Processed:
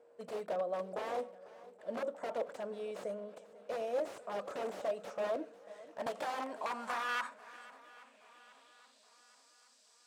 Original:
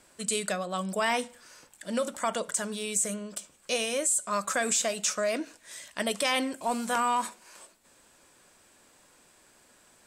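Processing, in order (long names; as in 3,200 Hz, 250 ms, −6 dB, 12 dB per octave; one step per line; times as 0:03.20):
one scale factor per block 5 bits
hum removal 96.77 Hz, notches 4
wrap-around overflow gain 24 dB
steady tone 470 Hz −60 dBFS
band-pass filter sweep 570 Hz → 5,000 Hz, 0:05.86–0:09.26
feedback echo with a long and a short gap by turns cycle 823 ms, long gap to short 1.5 to 1, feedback 47%, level −19.5 dB
0:06.06–0:07.09: multiband upward and downward compressor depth 100%
level +1.5 dB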